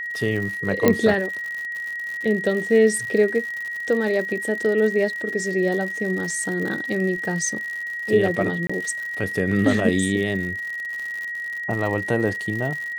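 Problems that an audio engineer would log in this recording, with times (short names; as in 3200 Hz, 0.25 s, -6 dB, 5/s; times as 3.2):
crackle 110/s -29 dBFS
tone 1900 Hz -27 dBFS
0.88 pop -3 dBFS
8.67–8.7 gap 25 ms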